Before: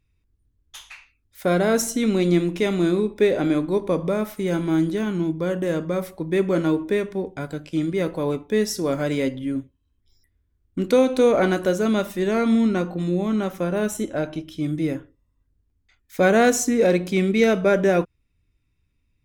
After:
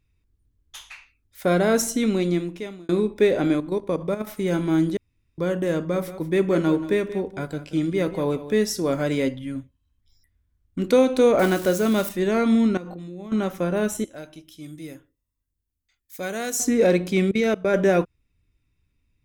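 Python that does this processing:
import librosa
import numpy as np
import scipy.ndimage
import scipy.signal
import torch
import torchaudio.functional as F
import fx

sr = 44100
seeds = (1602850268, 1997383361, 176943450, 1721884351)

y = fx.level_steps(x, sr, step_db=11, at=(3.55, 4.27))
y = fx.echo_single(y, sr, ms=182, db=-14.0, at=(5.93, 8.58), fade=0.02)
y = fx.peak_eq(y, sr, hz=370.0, db=fx.line((9.33, -13.0), (10.81, -6.0)), octaves=0.77, at=(9.33, 10.81), fade=0.02)
y = fx.crossing_spikes(y, sr, level_db=-24.5, at=(11.39, 12.09))
y = fx.level_steps(y, sr, step_db=18, at=(12.77, 13.32))
y = fx.pre_emphasis(y, sr, coefficient=0.8, at=(14.04, 16.6))
y = fx.level_steps(y, sr, step_db=20, at=(17.31, 17.74))
y = fx.edit(y, sr, fx.fade_out_span(start_s=1.98, length_s=0.91),
    fx.room_tone_fill(start_s=4.97, length_s=0.41), tone=tone)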